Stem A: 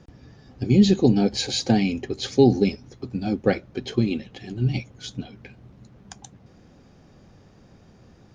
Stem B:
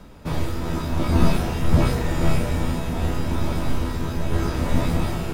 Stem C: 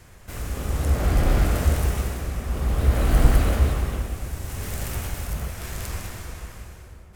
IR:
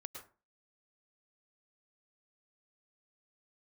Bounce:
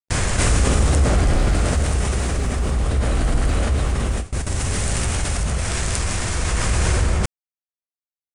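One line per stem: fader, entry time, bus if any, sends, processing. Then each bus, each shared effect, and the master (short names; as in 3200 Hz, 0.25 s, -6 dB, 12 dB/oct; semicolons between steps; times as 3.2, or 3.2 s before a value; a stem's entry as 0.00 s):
-20.0 dB, 0.00 s, no send, requantised 6-bit, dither none
-18.0 dB, 0.10 s, no send, robotiser 204 Hz
+2.5 dB, 0.10 s, no send, steep low-pass 10000 Hz 96 dB/oct; high shelf 4700 Hz +5.5 dB; fast leveller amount 70%; auto duck -8 dB, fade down 1.85 s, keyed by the first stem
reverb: off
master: gate with hold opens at -13 dBFS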